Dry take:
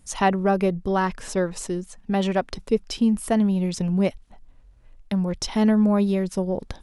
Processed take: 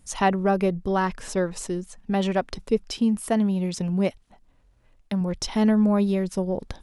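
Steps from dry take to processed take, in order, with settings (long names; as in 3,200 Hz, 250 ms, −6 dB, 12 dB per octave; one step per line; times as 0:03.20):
0:02.91–0:05.21: low-shelf EQ 65 Hz −11 dB
level −1 dB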